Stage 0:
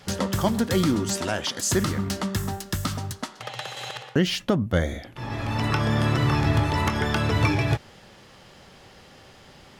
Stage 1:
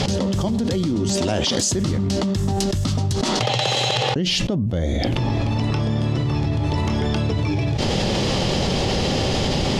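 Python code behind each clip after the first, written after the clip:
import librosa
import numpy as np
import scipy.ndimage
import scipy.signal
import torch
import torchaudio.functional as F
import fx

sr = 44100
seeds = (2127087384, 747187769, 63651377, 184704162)

y = scipy.signal.sosfilt(scipy.signal.butter(2, 5700.0, 'lowpass', fs=sr, output='sos'), x)
y = fx.peak_eq(y, sr, hz=1500.0, db=-13.5, octaves=1.5)
y = fx.env_flatten(y, sr, amount_pct=100)
y = F.gain(torch.from_numpy(y), -2.5).numpy()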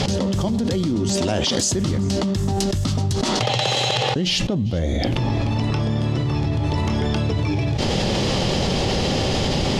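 y = fx.echo_feedback(x, sr, ms=397, feedback_pct=31, wet_db=-23.5)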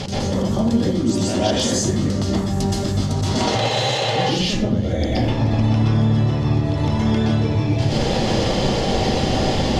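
y = fx.rev_plate(x, sr, seeds[0], rt60_s=0.78, hf_ratio=0.45, predelay_ms=110, drr_db=-7.0)
y = F.gain(torch.from_numpy(y), -6.5).numpy()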